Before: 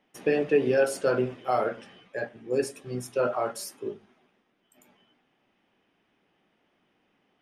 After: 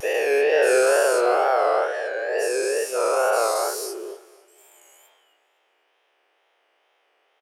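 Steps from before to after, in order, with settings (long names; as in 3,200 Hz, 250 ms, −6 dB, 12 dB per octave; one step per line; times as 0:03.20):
every bin's largest magnitude spread in time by 480 ms
Butterworth high-pass 430 Hz 36 dB per octave
pitch vibrato 2.2 Hz 88 cents
on a send: repeating echo 255 ms, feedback 41%, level −20 dB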